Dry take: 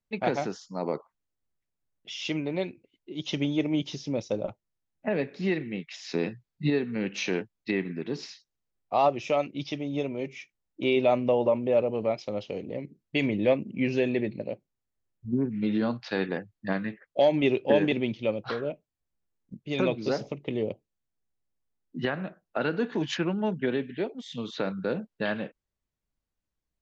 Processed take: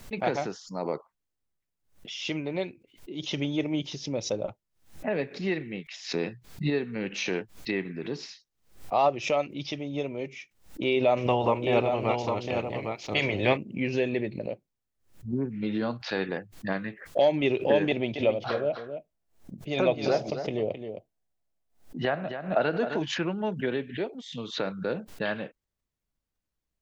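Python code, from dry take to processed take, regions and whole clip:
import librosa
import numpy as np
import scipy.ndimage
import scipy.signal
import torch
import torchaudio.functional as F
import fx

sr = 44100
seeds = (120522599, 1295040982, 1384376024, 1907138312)

y = fx.spec_clip(x, sr, under_db=16, at=(11.16, 13.56), fade=0.02)
y = fx.echo_single(y, sr, ms=807, db=-5.5, at=(11.16, 13.56), fade=0.02)
y = fx.chain(y, sr, fx.peak_eq(hz=670.0, db=9.5, octaves=0.47),
    fx.echo_single(ms=265, db=-9.5), at=(17.89, 23.0))
y = fx.dynamic_eq(y, sr, hz=230.0, q=1.4, threshold_db=-38.0, ratio=4.0, max_db=-4)
y = fx.pre_swell(y, sr, db_per_s=140.0)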